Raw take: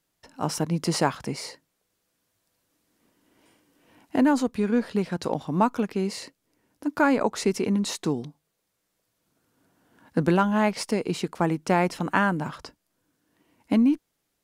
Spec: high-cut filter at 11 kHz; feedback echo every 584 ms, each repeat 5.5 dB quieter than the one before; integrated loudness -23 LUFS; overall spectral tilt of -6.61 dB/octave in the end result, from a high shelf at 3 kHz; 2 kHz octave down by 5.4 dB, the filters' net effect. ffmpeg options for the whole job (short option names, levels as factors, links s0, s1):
-af "lowpass=11000,equalizer=f=2000:t=o:g=-5,highshelf=f=3000:g=-7.5,aecho=1:1:584|1168|1752|2336|2920|3504|4088:0.531|0.281|0.149|0.079|0.0419|0.0222|0.0118,volume=1.41"